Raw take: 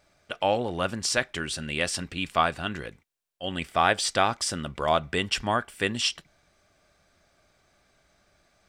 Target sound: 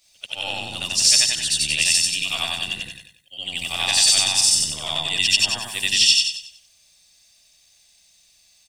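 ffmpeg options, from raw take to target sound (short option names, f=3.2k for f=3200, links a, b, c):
-filter_complex "[0:a]afftfilt=real='re':imag='-im':win_size=8192:overlap=0.75,aecho=1:1:94|188|282|376|470:0.708|0.262|0.0969|0.0359|0.0133,adynamicequalizer=threshold=0.00178:dfrequency=150:dqfactor=6.9:tfrequency=150:tqfactor=6.9:attack=5:release=100:ratio=0.375:range=3:mode=boostabove:tftype=bell,acrossover=split=730[a][b];[a]aeval=exprs='0.0944*(cos(1*acos(clip(val(0)/0.0944,-1,1)))-cos(1*PI/2))+0.0188*(cos(6*acos(clip(val(0)/0.0944,-1,1)))-cos(6*PI/2))':c=same[c];[b]aexciter=amount=12.4:drive=5.1:freq=2.3k[d];[c][d]amix=inputs=2:normalize=0,volume=-6.5dB"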